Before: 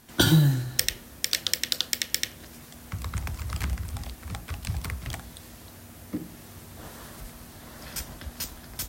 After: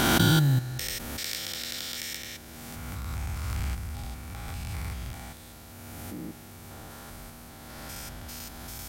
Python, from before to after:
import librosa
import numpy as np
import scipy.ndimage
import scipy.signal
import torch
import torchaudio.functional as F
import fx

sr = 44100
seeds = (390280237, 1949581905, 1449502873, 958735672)

y = fx.spec_steps(x, sr, hold_ms=200)
y = fx.small_body(y, sr, hz=(800.0, 1400.0, 2300.0), ring_ms=45, db=7)
y = fx.pre_swell(y, sr, db_per_s=21.0)